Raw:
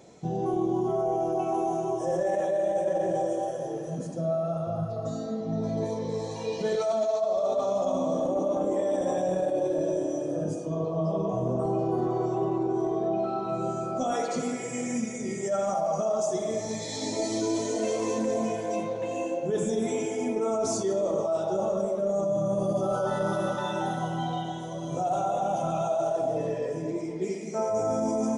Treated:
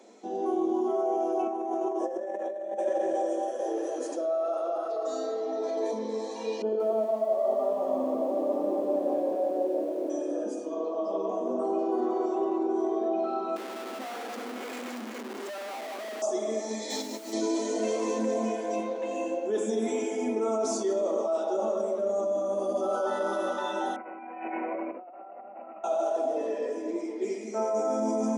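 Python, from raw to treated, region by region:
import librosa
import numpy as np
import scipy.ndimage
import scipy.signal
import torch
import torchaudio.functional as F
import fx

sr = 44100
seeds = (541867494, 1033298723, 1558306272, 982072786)

y = fx.chain(x, sr, fx.high_shelf(hz=2500.0, db=-10.0),
    fx.over_compress(threshold_db=-30.0, ratio=-0.5), at=(1.42, 2.79))
y = fx.chain(y, sr, fx.steep_highpass(hz=290.0, slope=72),
    fx.env_flatten(amount_pct=50), at=(3.59, 5.92))
y = fx.chain(y, sr, fx.moving_average(points=23),
    fx.echo_crushed(ms=177, feedback_pct=35, bits=9, wet_db=-4.0), at=(6.62, 10.1))
y = fx.chain(y, sr, fx.highpass(hz=1200.0, slope=6),
    fx.schmitt(flips_db=-37.5),
    fx.peak_eq(hz=8500.0, db=-2.5, octaves=2.6), at=(13.56, 16.22))
y = fx.chain(y, sr, fx.over_compress(threshold_db=-34.0, ratio=-0.5),
    fx.quant_dither(seeds[0], bits=8, dither='triangular'), at=(16.9, 17.33))
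y = fx.chain(y, sr, fx.over_compress(threshold_db=-35.0, ratio=-0.5),
    fx.resample_bad(factor=8, down='none', up='filtered'), at=(23.96, 25.84))
y = scipy.signal.sosfilt(scipy.signal.cheby1(8, 1.0, 210.0, 'highpass', fs=sr, output='sos'), y)
y = fx.high_shelf(y, sr, hz=9100.0, db=-5.0)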